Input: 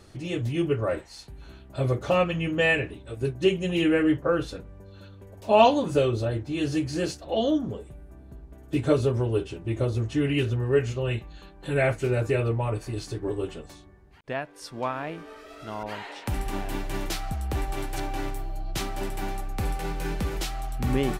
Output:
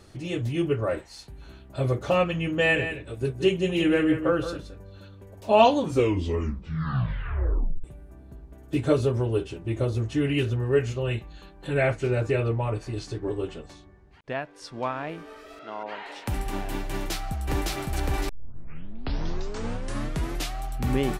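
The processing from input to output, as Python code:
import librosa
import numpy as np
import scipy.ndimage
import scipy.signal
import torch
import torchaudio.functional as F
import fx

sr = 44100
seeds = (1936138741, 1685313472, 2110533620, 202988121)

y = fx.echo_single(x, sr, ms=172, db=-10.0, at=(2.64, 4.97), fade=0.02)
y = fx.lowpass(y, sr, hz=7300.0, slope=12, at=(11.67, 15.09))
y = fx.bandpass_edges(y, sr, low_hz=310.0, high_hz=3400.0, at=(15.59, 16.06))
y = fx.echo_throw(y, sr, start_s=16.91, length_s=0.83, ms=560, feedback_pct=40, wet_db=0.0)
y = fx.edit(y, sr, fx.tape_stop(start_s=5.77, length_s=2.07),
    fx.tape_start(start_s=18.29, length_s=2.33), tone=tone)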